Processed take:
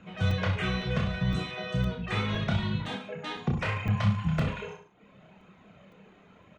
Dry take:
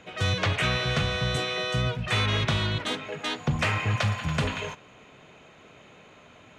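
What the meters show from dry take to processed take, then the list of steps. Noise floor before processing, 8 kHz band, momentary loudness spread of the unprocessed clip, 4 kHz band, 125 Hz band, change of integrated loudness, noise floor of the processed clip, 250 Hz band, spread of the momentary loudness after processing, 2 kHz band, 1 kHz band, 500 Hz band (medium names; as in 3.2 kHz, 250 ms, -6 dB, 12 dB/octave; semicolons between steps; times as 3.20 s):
-53 dBFS, under -10 dB, 7 LU, -9.5 dB, -1.0 dB, -3.0 dB, -57 dBFS, +2.0 dB, 9 LU, -6.5 dB, -5.0 dB, -4.5 dB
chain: low-pass 2 kHz 6 dB/octave; reverb removal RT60 0.86 s; peaking EQ 190 Hz +15 dB 0.37 oct; flange 0.73 Hz, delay 0.7 ms, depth 2 ms, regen +42%; reverse bouncing-ball echo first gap 30 ms, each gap 1.1×, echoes 5; crackling interface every 0.51 s, samples 128, zero, from 0.31 s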